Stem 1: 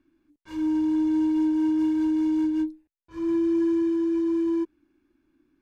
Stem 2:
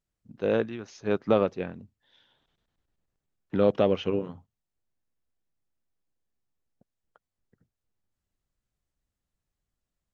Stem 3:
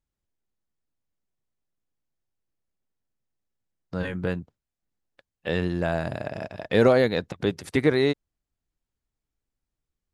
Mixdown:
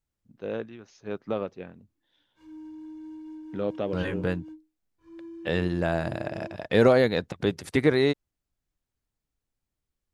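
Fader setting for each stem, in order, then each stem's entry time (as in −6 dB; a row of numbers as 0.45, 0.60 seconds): −19.0, −7.5, −0.5 decibels; 1.90, 0.00, 0.00 seconds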